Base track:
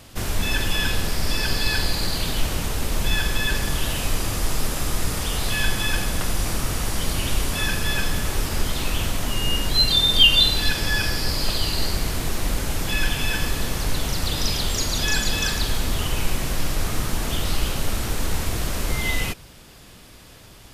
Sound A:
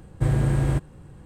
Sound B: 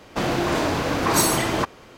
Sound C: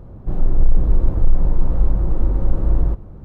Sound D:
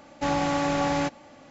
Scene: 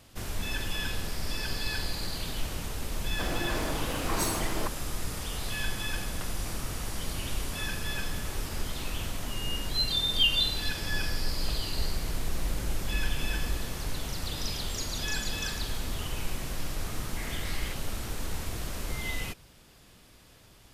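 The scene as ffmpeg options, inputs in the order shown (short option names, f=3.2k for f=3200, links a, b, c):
-filter_complex "[0:a]volume=-10dB[a];[3:a]acompressor=threshold=-17dB:ratio=6:attack=3.2:release=140:knee=1:detection=peak[b];[1:a]highpass=f=2.1k:t=q:w=8[c];[2:a]atrim=end=1.97,asetpts=PTS-STARTPTS,volume=-11.5dB,afade=t=in:d=0.004:c=hsin,afade=t=out:st=1.966:d=0.004:c=hsin,adelay=3030[d];[b]atrim=end=3.24,asetpts=PTS-STARTPTS,volume=-11dB,afade=t=in:d=0.004:c=hsin,afade=t=out:st=3.236:d=0.004:c=hsin,adelay=10640[e];[c]atrim=end=1.25,asetpts=PTS-STARTPTS,volume=-10.5dB,afade=t=in:d=0.004:c=hsin,afade=t=out:st=1.246:d=0.004:c=hsin,adelay=16950[f];[a][d][e][f]amix=inputs=4:normalize=0"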